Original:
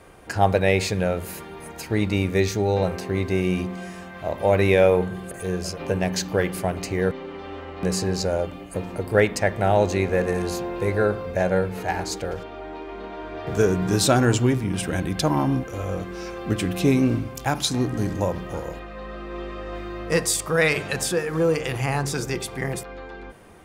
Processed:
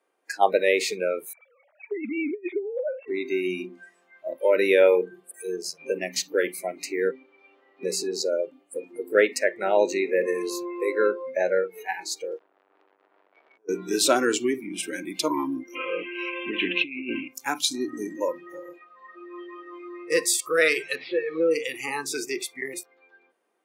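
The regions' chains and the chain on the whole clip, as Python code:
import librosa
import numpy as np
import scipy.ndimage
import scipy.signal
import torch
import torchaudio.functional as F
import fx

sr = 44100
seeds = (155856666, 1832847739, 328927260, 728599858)

y = fx.chain(x, sr, fx.sine_speech(),
    fx.high_shelf(hz=2500.0, db=-6.5),
    fx.over_compress(threshold_db=-26.0, ratio=-0.5), at=(1.33, 3.08))
y = fx.chain(y, sr, fx.lowpass(hz=1200.0, slope=6),
    fx.over_compress(threshold_db=-31.0, ratio=-1.0),
    fx.transformer_sat(knee_hz=2000.0), at=(12.38, 13.69))
y = fx.chain(y, sr, fx.lowpass_res(hz=2700.0, q=5.2),
    fx.over_compress(threshold_db=-22.0, ratio=-0.5), at=(15.75, 17.28))
y = fx.chain(y, sr, fx.delta_mod(bps=32000, step_db=-28.0),
    fx.air_absorb(metres=240.0), at=(20.95, 21.51))
y = scipy.signal.sosfilt(scipy.signal.butter(4, 300.0, 'highpass', fs=sr, output='sos'), y)
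y = fx.noise_reduce_blind(y, sr, reduce_db=24)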